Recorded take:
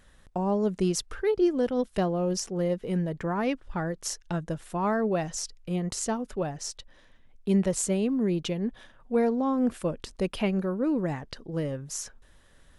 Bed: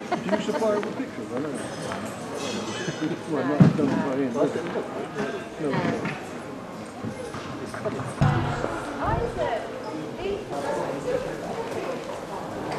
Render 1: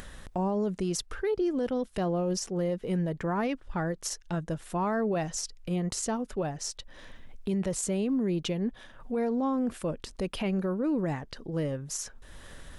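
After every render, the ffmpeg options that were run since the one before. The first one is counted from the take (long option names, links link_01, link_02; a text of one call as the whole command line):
ffmpeg -i in.wav -af "acompressor=mode=upward:threshold=-33dB:ratio=2.5,alimiter=limit=-22dB:level=0:latency=1:release=25" out.wav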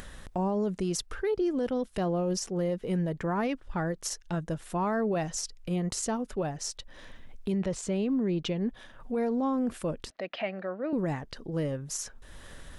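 ffmpeg -i in.wav -filter_complex "[0:a]asettb=1/sr,asplit=3[link_01][link_02][link_03];[link_01]atrim=end=7.524[link_04];[link_02]atrim=start=7.52:end=8.61,asetpts=PTS-STARTPTS,afade=type=in:duration=0.004:curve=qsin,afade=type=out:start_time=1.086:duration=0.004:curve=qsin,lowpass=5500[link_05];[link_03]atrim=start=8.606[link_06];[link_04][link_05]acrossfade=duration=0.004:curve1=hsin:curve2=qsin[link_07];[link_07][link_06]acrossfade=duration=0.004:curve1=qsin:curve2=hsin,asettb=1/sr,asplit=3[link_08][link_09][link_10];[link_08]atrim=end=10.104[link_11];[link_09]atrim=start=10.1:end=10.93,asetpts=PTS-STARTPTS,afade=type=in:duration=0.004:curve=qsin,afade=type=out:start_time=0.826:duration=0.004:curve=qsin,highpass=380,equalizer=frequency=410:width_type=q:width=4:gain=-9,equalizer=frequency=660:width_type=q:width=4:gain=10,equalizer=frequency=980:width_type=q:width=4:gain=-6,equalizer=frequency=1900:width_type=q:width=4:gain=8,equalizer=frequency=3300:width_type=q:width=4:gain=-3,lowpass=frequency=4000:width=0.5412,lowpass=frequency=4000:width=1.3066[link_12];[link_10]atrim=start=10.926[link_13];[link_11][link_12]acrossfade=duration=0.004:curve1=hsin:curve2=qsin[link_14];[link_14][link_13]acrossfade=duration=0.004:curve1=qsin:curve2=hsin" out.wav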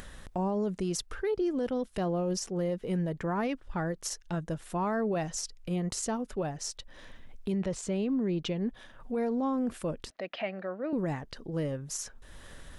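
ffmpeg -i in.wav -af "volume=-1.5dB" out.wav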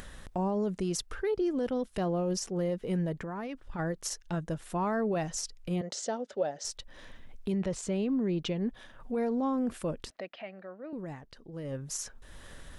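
ffmpeg -i in.wav -filter_complex "[0:a]asplit=3[link_01][link_02][link_03];[link_01]afade=type=out:start_time=3.15:duration=0.02[link_04];[link_02]acompressor=threshold=-34dB:ratio=6:attack=3.2:release=140:knee=1:detection=peak,afade=type=in:start_time=3.15:duration=0.02,afade=type=out:start_time=3.78:duration=0.02[link_05];[link_03]afade=type=in:start_time=3.78:duration=0.02[link_06];[link_04][link_05][link_06]amix=inputs=3:normalize=0,asettb=1/sr,asplit=3[link_07][link_08][link_09];[link_07]atrim=end=5.814[link_10];[link_08]atrim=start=5.81:end=6.65,asetpts=PTS-STARTPTS,afade=type=in:duration=0.004:curve=qsin,afade=type=out:start_time=0.836:duration=0.004:curve=qsin,highpass=310,equalizer=frequency=330:width_type=q:width=4:gain=-4,equalizer=frequency=570:width_type=q:width=4:gain=9,equalizer=frequency=1100:width_type=q:width=4:gain=-9,equalizer=frequency=2500:width_type=q:width=4:gain=-6,equalizer=frequency=3500:width_type=q:width=4:gain=3,lowpass=frequency=6800:width=0.5412,lowpass=frequency=6800:width=1.3066[link_11];[link_09]atrim=start=6.646[link_12];[link_10][link_11]acrossfade=duration=0.004:curve1=hsin:curve2=qsin[link_13];[link_13][link_12]acrossfade=duration=0.004:curve1=qsin:curve2=hsin,asplit=3[link_14][link_15][link_16];[link_14]atrim=end=10.31,asetpts=PTS-STARTPTS,afade=type=out:start_time=10.17:duration=0.14:silence=0.375837[link_17];[link_15]atrim=start=10.31:end=11.63,asetpts=PTS-STARTPTS,volume=-8.5dB[link_18];[link_16]atrim=start=11.63,asetpts=PTS-STARTPTS,afade=type=in:duration=0.14:silence=0.375837[link_19];[link_17][link_18][link_19]concat=n=3:v=0:a=1" out.wav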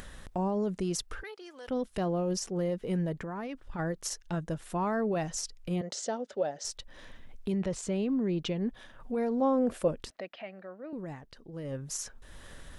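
ffmpeg -i in.wav -filter_complex "[0:a]asettb=1/sr,asplit=3[link_01][link_02][link_03];[link_01]atrim=end=1.234[link_04];[link_02]atrim=start=1.23:end=1.68,asetpts=PTS-STARTPTS,afade=type=in:duration=0.004:curve=qsin,afade=type=out:start_time=0.446:duration=0.004:curve=qsin,highpass=1100[link_05];[link_03]atrim=start=1.676[link_06];[link_04][link_05]acrossfade=duration=0.004:curve1=hsin:curve2=qsin[link_07];[link_07][link_06]acrossfade=duration=0.004:curve1=qsin:curve2=hsin,asettb=1/sr,asplit=3[link_08][link_09][link_10];[link_08]atrim=end=9.414[link_11];[link_09]atrim=start=9.41:end=9.88,asetpts=PTS-STARTPTS,afade=type=in:duration=0.004:curve=qsin,afade=type=out:start_time=0.466:duration=0.004:curve=qsin,equalizer=frequency=560:width=1.5:gain=10[link_12];[link_10]atrim=start=9.876[link_13];[link_11][link_12]acrossfade=duration=0.004:curve1=hsin:curve2=qsin[link_14];[link_14][link_13]acrossfade=duration=0.004:curve1=qsin:curve2=hsin" out.wav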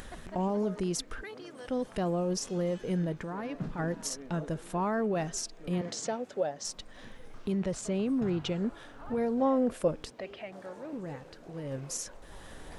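ffmpeg -i in.wav -i bed.wav -filter_complex "[1:a]volume=-21.5dB[link_01];[0:a][link_01]amix=inputs=2:normalize=0" out.wav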